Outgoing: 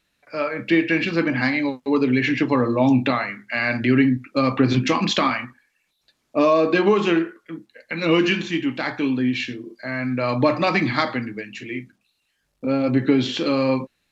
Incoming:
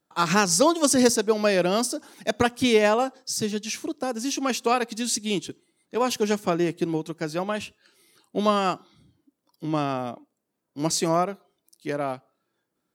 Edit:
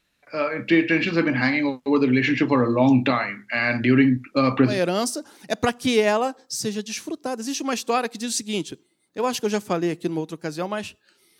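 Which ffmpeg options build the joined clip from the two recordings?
-filter_complex "[0:a]apad=whole_dur=11.39,atrim=end=11.39,atrim=end=4.8,asetpts=PTS-STARTPTS[s0];[1:a]atrim=start=1.41:end=8.16,asetpts=PTS-STARTPTS[s1];[s0][s1]acrossfade=d=0.16:c1=tri:c2=tri"

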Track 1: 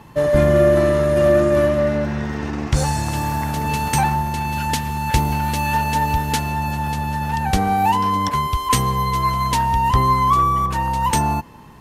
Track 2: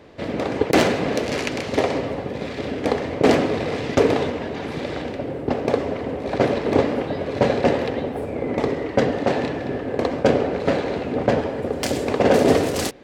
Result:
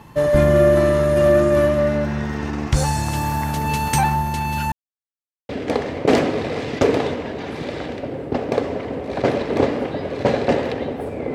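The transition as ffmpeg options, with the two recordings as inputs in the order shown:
-filter_complex "[0:a]apad=whole_dur=11.34,atrim=end=11.34,asplit=2[s0][s1];[s0]atrim=end=4.72,asetpts=PTS-STARTPTS,afade=t=out:st=4.716:d=0.004:c=hsin[s2];[s1]atrim=start=4.72:end=5.49,asetpts=PTS-STARTPTS,volume=0[s3];[1:a]atrim=start=2.65:end=8.5,asetpts=PTS-STARTPTS,afade=t=in:d=0.004:c=hsin[s4];[s2][s3][s4]concat=n=3:v=0:a=1"

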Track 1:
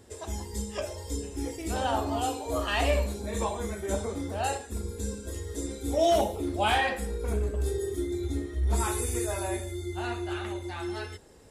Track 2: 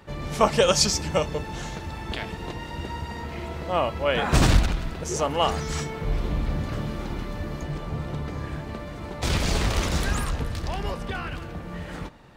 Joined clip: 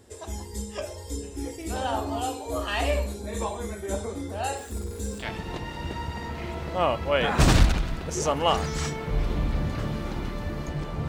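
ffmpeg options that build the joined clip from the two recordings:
-filter_complex "[0:a]asettb=1/sr,asplit=3[s0][s1][s2];[s0]atrim=end=4.574[s3];[s1]atrim=start=4.57:end=5.26,asetpts=PTS-STARTPTS,afade=t=in:d=0.004:c=qsin,afade=t=out:st=0.686:d=0.004:c=qsin,aeval=exprs='val(0)+0.5*0.00841*sgn(val(0))':c=same[s4];[s2]atrim=start=5.256[s5];[s3][s4]acrossfade=d=0.004:c1=hsin:c2=qsin[s6];[s6][s5]acrossfade=d=0.004:c1=qsin:c2=hsin,apad=whole_dur=11.08,atrim=end=11.08,atrim=end=5.26,asetpts=PTS-STARTPTS[s7];[1:a]atrim=start=2.12:end=8.02,asetpts=PTS-STARTPTS[s8];[s7][s8]acrossfade=d=0.08:c1=tri:c2=tri"

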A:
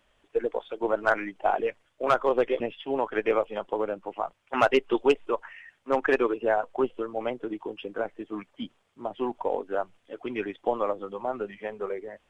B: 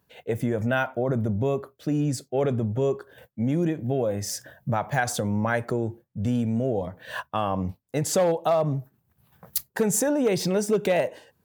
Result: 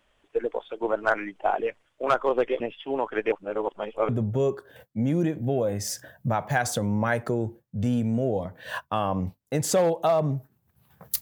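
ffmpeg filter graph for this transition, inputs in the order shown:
-filter_complex "[0:a]apad=whole_dur=11.21,atrim=end=11.21,asplit=2[s0][s1];[s0]atrim=end=3.322[s2];[s1]atrim=start=3.318:end=4.092,asetpts=PTS-STARTPTS,areverse[s3];[1:a]atrim=start=2.508:end=9.63[s4];[s2][s3]acrossfade=d=0.004:c1=hsin:c2=hsin[s5];[s5][s4]acrossfade=d=0.004:c1=hsin:c2=hsin"

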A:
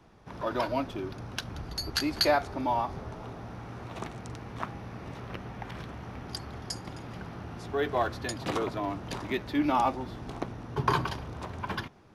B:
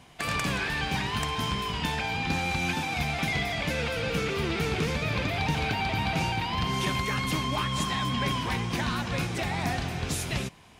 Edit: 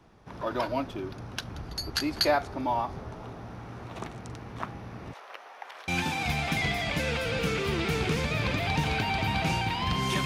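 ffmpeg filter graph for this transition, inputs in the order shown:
-filter_complex "[0:a]asettb=1/sr,asplit=3[s0][s1][s2];[s0]atrim=end=5.134[s3];[s1]atrim=start=5.13:end=5.88,asetpts=PTS-STARTPTS,afade=t=in:d=0.004:c=qsin,afade=t=out:st=0.746:d=0.004:c=qsin,highpass=f=570:w=0.5412,highpass=f=570:w=1.3066[s4];[s2]atrim=start=5.876[s5];[s3][s4]acrossfade=d=0.004:c1=hsin:c2=qsin[s6];[s6][s5]acrossfade=d=0.004:c1=qsin:c2=hsin,apad=whole_dur=10.25,atrim=end=10.25,atrim=end=5.882[s7];[1:a]atrim=start=2.588:end=6.96[s8];[s7][s8]acrossfade=d=0.004:c1=hsin:c2=hsin"

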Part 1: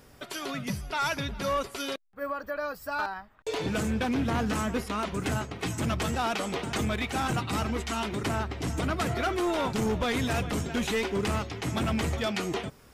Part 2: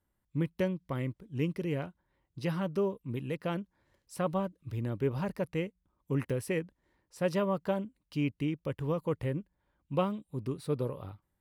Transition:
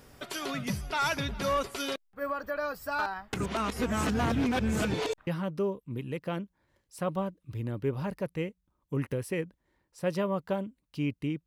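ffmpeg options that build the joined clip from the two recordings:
-filter_complex "[0:a]apad=whole_dur=11.46,atrim=end=11.46,asplit=2[s0][s1];[s0]atrim=end=3.332[s2];[s1]atrim=start=3.328:end=5.272,asetpts=PTS-STARTPTS,areverse[s3];[1:a]atrim=start=2.448:end=8.64[s4];[s2][s3]acrossfade=d=0.004:c1=hsin:c2=hsin[s5];[s5][s4]acrossfade=d=0.004:c1=hsin:c2=hsin"

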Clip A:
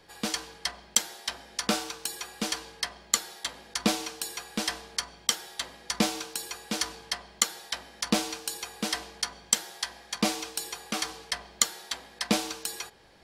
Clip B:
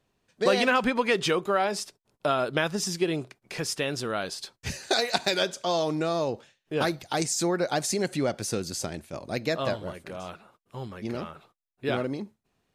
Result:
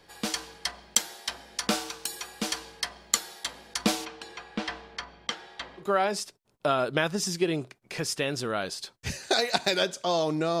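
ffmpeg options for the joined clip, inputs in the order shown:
-filter_complex "[0:a]asplit=3[s0][s1][s2];[s0]afade=t=out:st=4.04:d=0.02[s3];[s1]lowpass=2900,afade=t=in:st=4.04:d=0.02,afade=t=out:st=5.87:d=0.02[s4];[s2]afade=t=in:st=5.87:d=0.02[s5];[s3][s4][s5]amix=inputs=3:normalize=0,apad=whole_dur=10.6,atrim=end=10.6,atrim=end=5.87,asetpts=PTS-STARTPTS[s6];[1:a]atrim=start=1.37:end=6.2,asetpts=PTS-STARTPTS[s7];[s6][s7]acrossfade=d=0.1:c1=tri:c2=tri"

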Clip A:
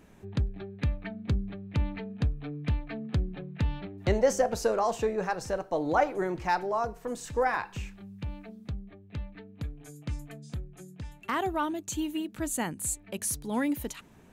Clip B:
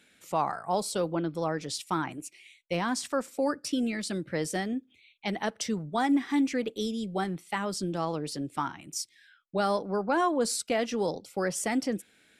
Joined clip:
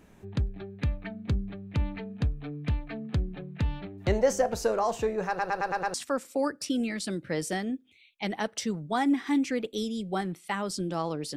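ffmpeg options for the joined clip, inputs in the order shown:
-filter_complex "[0:a]apad=whole_dur=11.36,atrim=end=11.36,asplit=6[s0][s1][s2][s3][s4][s5];[s0]atrim=end=5.392[s6];[s1]atrim=start=5.278:end=5.392[s7];[s2]atrim=start=5.278:end=5.392[s8];[s3]atrim=start=5.278:end=5.392[s9];[s4]atrim=start=5.278:end=5.392[s10];[s5]atrim=start=5.278:end=5.392[s11];[1:a]atrim=start=2.968:end=8.39[s12];[s6][s7]acrossfade=d=0.004:c1=hsin:c2=hsin[s13];[s13][s8]acrossfade=d=0.004:c1=hsin:c2=hsin[s14];[s14][s9]acrossfade=d=0.004:c1=hsin:c2=hsin[s15];[s15][s10]acrossfade=d=0.004:c1=hsin:c2=hsin[s16];[s16][s11]acrossfade=d=0.004:c1=hsin:c2=hsin[s17];[s17][s12]acrossfade=d=0.004:c1=hsin:c2=hsin"

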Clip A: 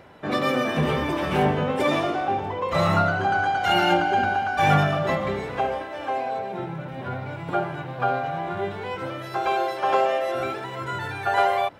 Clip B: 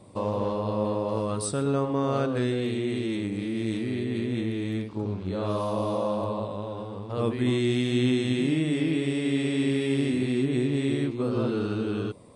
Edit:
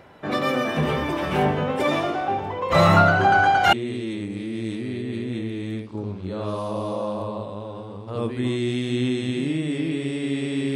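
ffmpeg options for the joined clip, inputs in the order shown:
-filter_complex "[0:a]asettb=1/sr,asplit=3[s0][s1][s2];[s0]atrim=end=2.704[s3];[s1]atrim=start=2.7:end=3.73,asetpts=PTS-STARTPTS,afade=t=in:d=0.004:c=qsin,afade=t=out:st=1.026:d=0.004:c=qsin,acontrast=45[s4];[s2]atrim=start=3.726[s5];[s3][s4]acrossfade=d=0.004:c1=hsin:c2=qsin[s6];[s6][s5]acrossfade=d=0.004:c1=qsin:c2=hsin,apad=whole_dur=10.75,atrim=end=10.75,atrim=end=3.732[s7];[1:a]atrim=start=2.748:end=9.77[s8];[s7][s8]acrossfade=d=0.004:c1=hsin:c2=hsin"

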